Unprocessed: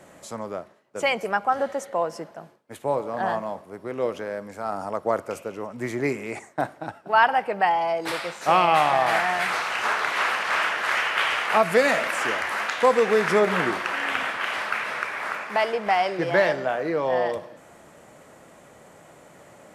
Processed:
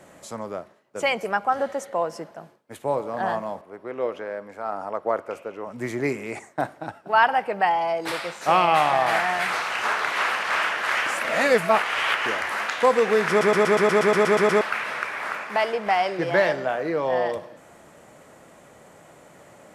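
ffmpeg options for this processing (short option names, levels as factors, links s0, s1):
-filter_complex "[0:a]asettb=1/sr,asplit=3[s0][s1][s2];[s0]atrim=end=3.614[s3];[s1]atrim=start=3.61:end=5.67,asetpts=PTS-STARTPTS,afade=t=in:d=0.004:c=qsin,afade=t=out:st=2.056:d=0.004:c=qsin,bass=f=250:g=-9,treble=f=4000:g=-12[s4];[s2]atrim=start=5.666[s5];[s3][s4]acrossfade=d=0.004:c1=hsin:c2=qsin[s6];[s6][s5]acrossfade=d=0.004:c1=qsin:c2=hsin,asplit=14[s7][s8][s9][s10][s11][s12][s13][s14][s15][s16][s17][s18][s19][s20];[s7]atrim=end=11.062[s21];[s8]atrim=start=11.058:end=12.262,asetpts=PTS-STARTPTS,areverse[s22];[s9]atrim=start=12.258:end=13.412[s23];[s10]atrim=start=13.288:end=13.412[s24];[s11]atrim=start=13.288:end=13.412[s25];[s12]atrim=start=13.288:end=13.412[s26];[s13]atrim=start=13.288:end=13.412[s27];[s14]atrim=start=13.288:end=13.412[s28];[s15]atrim=start=13.288:end=13.412[s29];[s16]atrim=start=13.288:end=13.412[s30];[s17]atrim=start=13.288:end=13.412[s31];[s18]atrim=start=13.288:end=13.412[s32];[s19]atrim=start=13.288:end=13.412[s33];[s20]atrim=start=14.608[s34];[s21][s22]acrossfade=d=0.004:c1=hsin:c2=hsin[s35];[s35][s23]acrossfade=d=0.004:c1=hsin:c2=hsin[s36];[s36][s24]acrossfade=d=0.004:c1=hsin:c2=hsin[s37];[s37][s25]acrossfade=d=0.004:c1=hsin:c2=hsin[s38];[s38][s26]acrossfade=d=0.004:c1=hsin:c2=hsin[s39];[s39][s27]acrossfade=d=0.004:c1=hsin:c2=hsin[s40];[s40][s28]acrossfade=d=0.004:c1=hsin:c2=hsin[s41];[s41][s29]acrossfade=d=0.004:c1=hsin:c2=hsin[s42];[s42][s30]acrossfade=d=0.004:c1=hsin:c2=hsin[s43];[s43][s31]acrossfade=d=0.004:c1=hsin:c2=hsin[s44];[s44][s32]acrossfade=d=0.004:c1=hsin:c2=hsin[s45];[s45][s33]acrossfade=d=0.004:c1=hsin:c2=hsin[s46];[s46][s34]acrossfade=d=0.004:c1=hsin:c2=hsin"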